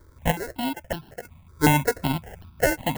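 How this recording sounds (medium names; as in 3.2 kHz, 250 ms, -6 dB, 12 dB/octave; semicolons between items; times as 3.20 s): aliases and images of a low sample rate 1.2 kHz, jitter 0%; random-step tremolo 3.2 Hz, depth 80%; notches that jump at a steady rate 5.4 Hz 740–2000 Hz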